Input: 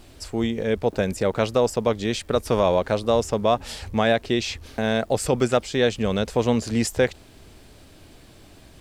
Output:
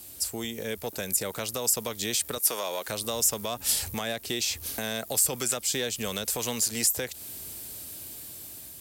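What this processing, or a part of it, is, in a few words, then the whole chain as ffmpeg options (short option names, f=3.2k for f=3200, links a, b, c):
FM broadcast chain: -filter_complex "[0:a]highpass=64,dynaudnorm=f=720:g=5:m=11.5dB,acrossover=split=450|990[a][b][c];[a]acompressor=threshold=-28dB:ratio=4[d];[b]acompressor=threshold=-30dB:ratio=4[e];[c]acompressor=threshold=-28dB:ratio=4[f];[d][e][f]amix=inputs=3:normalize=0,aemphasis=mode=production:type=50fm,alimiter=limit=-13.5dB:level=0:latency=1:release=153,asoftclip=type=hard:threshold=-16dB,lowpass=f=15k:w=0.5412,lowpass=f=15k:w=1.3066,aemphasis=mode=production:type=50fm,asettb=1/sr,asplit=3[g][h][i];[g]atrim=end=2.384[j];[h]atrim=start=2.38:end=2.88,asetpts=PTS-STARTPTS,afade=t=in:d=0.004:c=qsin,afade=t=out:st=0.496:d=0.004:c=qsin,highpass=340[k];[i]atrim=start=2.876[l];[j][k]acrossfade=d=0.004:c1=hsin:c2=qsin[m];[m][l]acrossfade=d=0.004:c1=qsin:c2=hsin,volume=-6.5dB"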